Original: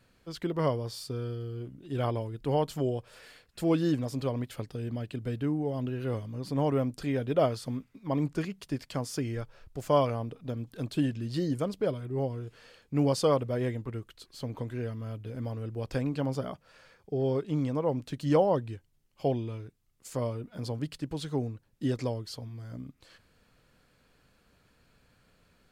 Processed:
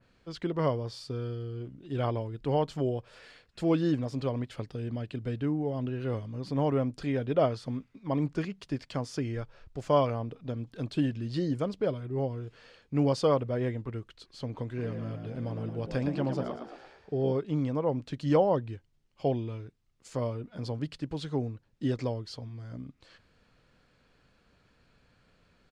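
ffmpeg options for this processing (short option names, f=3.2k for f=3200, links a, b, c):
-filter_complex "[0:a]asplit=3[a][b][c];[a]afade=t=out:st=14.77:d=0.02[d];[b]asplit=7[e][f][g][h][i][j][k];[f]adelay=112,afreqshift=52,volume=-7.5dB[l];[g]adelay=224,afreqshift=104,volume=-13.3dB[m];[h]adelay=336,afreqshift=156,volume=-19.2dB[n];[i]adelay=448,afreqshift=208,volume=-25dB[o];[j]adelay=560,afreqshift=260,volume=-30.9dB[p];[k]adelay=672,afreqshift=312,volume=-36.7dB[q];[e][l][m][n][o][p][q]amix=inputs=7:normalize=0,afade=t=in:st=14.77:d=0.02,afade=t=out:st=17.31:d=0.02[r];[c]afade=t=in:st=17.31:d=0.02[s];[d][r][s]amix=inputs=3:normalize=0,lowpass=5.9k,adynamicequalizer=threshold=0.00562:dfrequency=2600:dqfactor=0.7:tfrequency=2600:tqfactor=0.7:attack=5:release=100:ratio=0.375:range=2:mode=cutabove:tftype=highshelf"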